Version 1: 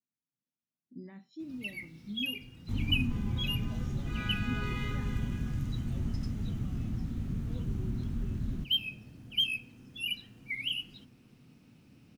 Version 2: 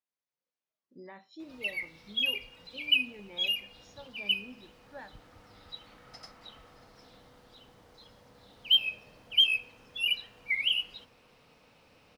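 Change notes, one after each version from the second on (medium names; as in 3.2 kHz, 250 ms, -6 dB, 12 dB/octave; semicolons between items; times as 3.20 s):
first sound: add peaking EQ 370 Hz -7.5 dB 0.26 oct; second sound: muted; master: add graphic EQ 125/250/500/1000/2000/4000 Hz -10/-11/+12/+9/+4/+6 dB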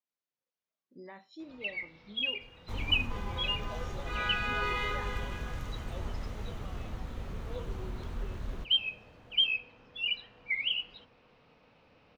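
first sound: add distance through air 200 m; second sound: unmuted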